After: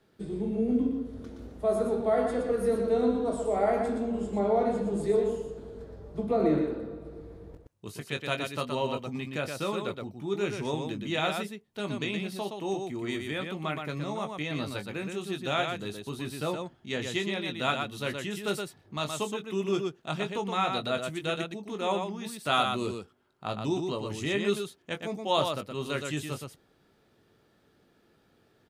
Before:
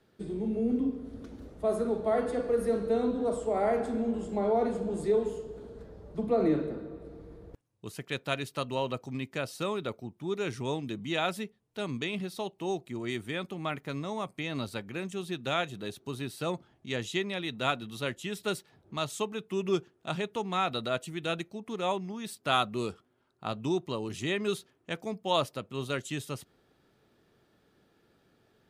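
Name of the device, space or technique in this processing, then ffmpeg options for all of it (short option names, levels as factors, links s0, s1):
slapback doubling: -filter_complex "[0:a]asplit=3[s0][s1][s2];[s1]adelay=20,volume=0.447[s3];[s2]adelay=120,volume=0.562[s4];[s0][s3][s4]amix=inputs=3:normalize=0"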